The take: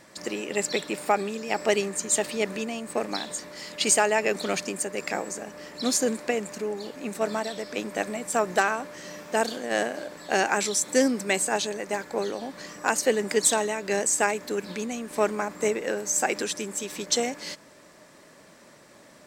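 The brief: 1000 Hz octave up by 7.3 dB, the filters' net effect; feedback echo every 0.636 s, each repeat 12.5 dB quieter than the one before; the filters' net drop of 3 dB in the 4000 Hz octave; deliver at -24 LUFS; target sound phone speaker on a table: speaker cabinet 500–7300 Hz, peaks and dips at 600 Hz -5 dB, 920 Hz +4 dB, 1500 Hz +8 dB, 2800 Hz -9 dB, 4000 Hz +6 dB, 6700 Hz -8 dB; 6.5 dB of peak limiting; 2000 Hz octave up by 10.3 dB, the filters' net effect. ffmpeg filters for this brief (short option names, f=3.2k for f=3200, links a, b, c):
-af "equalizer=f=1k:t=o:g=5.5,equalizer=f=2k:t=o:g=7,equalizer=f=4k:t=o:g=-6.5,alimiter=limit=-10.5dB:level=0:latency=1,highpass=f=500:w=0.5412,highpass=f=500:w=1.3066,equalizer=f=600:t=q:w=4:g=-5,equalizer=f=920:t=q:w=4:g=4,equalizer=f=1.5k:t=q:w=4:g=8,equalizer=f=2.8k:t=q:w=4:g=-9,equalizer=f=4k:t=q:w=4:g=6,equalizer=f=6.7k:t=q:w=4:g=-8,lowpass=f=7.3k:w=0.5412,lowpass=f=7.3k:w=1.3066,aecho=1:1:636|1272|1908:0.237|0.0569|0.0137,volume=1.5dB"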